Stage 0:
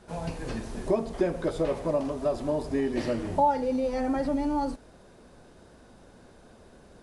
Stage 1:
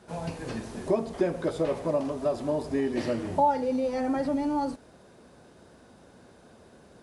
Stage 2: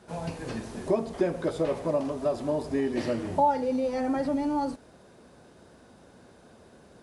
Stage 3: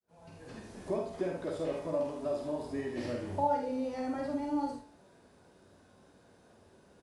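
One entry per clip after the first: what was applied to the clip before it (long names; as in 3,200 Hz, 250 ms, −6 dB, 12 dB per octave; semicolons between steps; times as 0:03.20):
high-pass filter 78 Hz 12 dB per octave
no processing that can be heard
fade in at the beginning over 0.90 s; tuned comb filter 96 Hz, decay 0.57 s, harmonics all, mix 70%; ambience of single reflections 50 ms −4 dB, 74 ms −7 dB; level −1 dB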